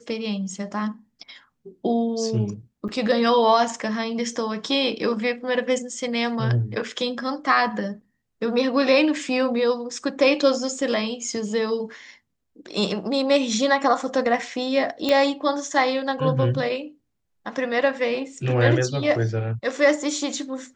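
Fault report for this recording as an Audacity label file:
2.880000	2.890000	dropout 6.7 ms
15.090000	15.090000	pop -9 dBFS

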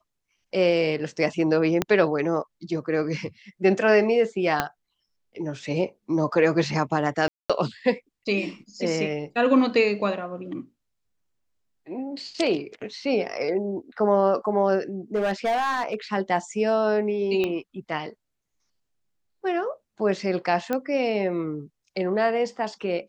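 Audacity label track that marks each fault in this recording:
1.820000	1.820000	pop -8 dBFS
4.600000	4.600000	pop -7 dBFS
7.280000	7.500000	dropout 216 ms
15.150000	15.950000	clipped -19.5 dBFS
17.440000	17.440000	pop -14 dBFS
20.730000	20.730000	pop -13 dBFS

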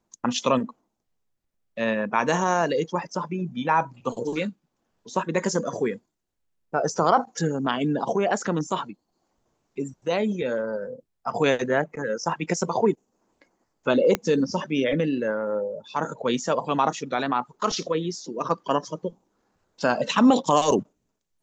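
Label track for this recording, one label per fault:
14.150000	14.150000	pop -8 dBFS

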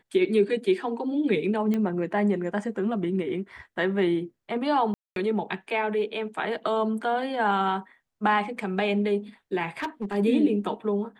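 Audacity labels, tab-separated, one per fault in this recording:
1.740000	1.740000	pop -17 dBFS
4.940000	5.160000	dropout 222 ms
9.800000	10.150000	clipped -25 dBFS

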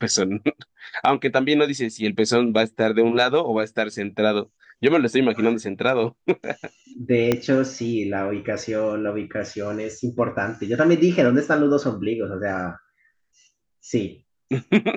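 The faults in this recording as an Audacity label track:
7.320000	7.320000	pop -6 dBFS

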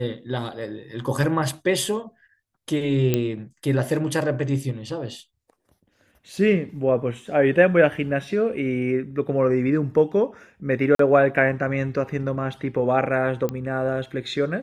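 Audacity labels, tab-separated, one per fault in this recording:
3.140000	3.140000	pop -7 dBFS
10.950000	10.990000	dropout 43 ms
13.490000	13.490000	pop -14 dBFS

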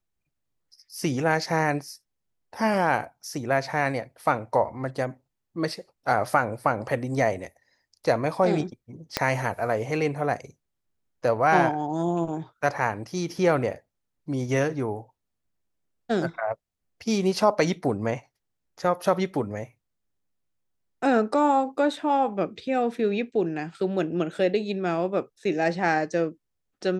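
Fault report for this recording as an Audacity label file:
9.170000	9.170000	pop -7 dBFS

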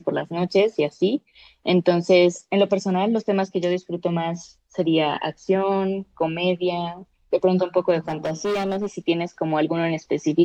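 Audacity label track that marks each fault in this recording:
7.990000	8.870000	clipped -20.5 dBFS

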